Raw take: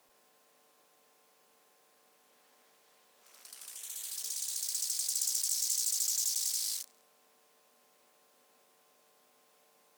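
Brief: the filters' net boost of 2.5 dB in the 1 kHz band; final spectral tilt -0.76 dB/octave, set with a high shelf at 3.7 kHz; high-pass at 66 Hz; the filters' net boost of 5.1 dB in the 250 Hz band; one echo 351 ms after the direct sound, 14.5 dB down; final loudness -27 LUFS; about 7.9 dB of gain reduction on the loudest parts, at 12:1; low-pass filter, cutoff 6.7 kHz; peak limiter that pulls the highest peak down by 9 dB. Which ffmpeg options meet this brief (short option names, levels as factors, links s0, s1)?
-af "highpass=66,lowpass=6700,equalizer=f=250:t=o:g=6,equalizer=f=1000:t=o:g=3.5,highshelf=f=3700:g=-7.5,acompressor=threshold=0.00501:ratio=12,alimiter=level_in=11.9:limit=0.0631:level=0:latency=1,volume=0.0841,aecho=1:1:351:0.188,volume=21.1"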